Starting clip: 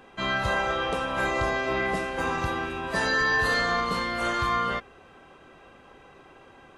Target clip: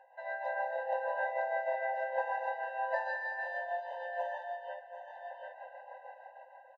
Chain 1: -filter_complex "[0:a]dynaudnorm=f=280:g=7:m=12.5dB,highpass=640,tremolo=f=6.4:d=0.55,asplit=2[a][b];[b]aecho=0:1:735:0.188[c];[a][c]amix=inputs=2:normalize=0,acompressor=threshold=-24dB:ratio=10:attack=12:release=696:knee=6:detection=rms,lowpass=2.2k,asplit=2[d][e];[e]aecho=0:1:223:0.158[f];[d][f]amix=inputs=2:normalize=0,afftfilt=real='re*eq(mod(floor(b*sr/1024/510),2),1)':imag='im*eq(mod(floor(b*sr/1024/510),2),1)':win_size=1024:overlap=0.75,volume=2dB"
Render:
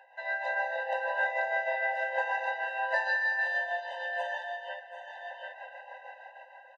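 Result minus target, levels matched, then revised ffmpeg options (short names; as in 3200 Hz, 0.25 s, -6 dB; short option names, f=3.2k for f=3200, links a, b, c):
2000 Hz band +4.0 dB
-filter_complex "[0:a]dynaudnorm=f=280:g=7:m=12.5dB,highpass=640,tremolo=f=6.4:d=0.55,asplit=2[a][b];[b]aecho=0:1:735:0.188[c];[a][c]amix=inputs=2:normalize=0,acompressor=threshold=-24dB:ratio=10:attack=12:release=696:knee=6:detection=rms,lowpass=940,asplit=2[d][e];[e]aecho=0:1:223:0.158[f];[d][f]amix=inputs=2:normalize=0,afftfilt=real='re*eq(mod(floor(b*sr/1024/510),2),1)':imag='im*eq(mod(floor(b*sr/1024/510),2),1)':win_size=1024:overlap=0.75,volume=2dB"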